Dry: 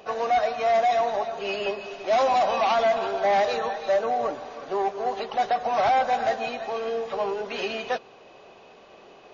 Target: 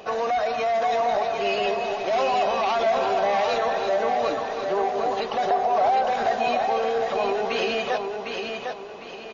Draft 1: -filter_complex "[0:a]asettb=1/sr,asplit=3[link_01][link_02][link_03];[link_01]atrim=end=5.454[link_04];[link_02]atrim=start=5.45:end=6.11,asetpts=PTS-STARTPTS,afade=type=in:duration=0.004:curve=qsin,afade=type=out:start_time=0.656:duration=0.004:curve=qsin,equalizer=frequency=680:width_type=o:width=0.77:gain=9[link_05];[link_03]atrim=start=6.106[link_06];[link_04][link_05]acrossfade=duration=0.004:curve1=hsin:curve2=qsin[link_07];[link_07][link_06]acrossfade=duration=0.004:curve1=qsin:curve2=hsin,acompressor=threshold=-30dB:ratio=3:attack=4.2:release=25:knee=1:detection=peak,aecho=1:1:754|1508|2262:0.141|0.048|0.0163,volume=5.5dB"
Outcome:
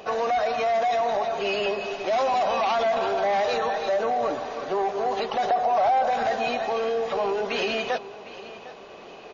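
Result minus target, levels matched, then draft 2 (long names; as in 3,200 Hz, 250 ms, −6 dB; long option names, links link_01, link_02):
echo-to-direct −12 dB
-filter_complex "[0:a]asettb=1/sr,asplit=3[link_01][link_02][link_03];[link_01]atrim=end=5.454[link_04];[link_02]atrim=start=5.45:end=6.11,asetpts=PTS-STARTPTS,afade=type=in:duration=0.004:curve=qsin,afade=type=out:start_time=0.656:duration=0.004:curve=qsin,equalizer=frequency=680:width_type=o:width=0.77:gain=9[link_05];[link_03]atrim=start=6.106[link_06];[link_04][link_05]acrossfade=duration=0.004:curve1=hsin:curve2=qsin[link_07];[link_07][link_06]acrossfade=duration=0.004:curve1=qsin:curve2=hsin,acompressor=threshold=-30dB:ratio=3:attack=4.2:release=25:knee=1:detection=peak,aecho=1:1:754|1508|2262|3016:0.562|0.191|0.065|0.0221,volume=5.5dB"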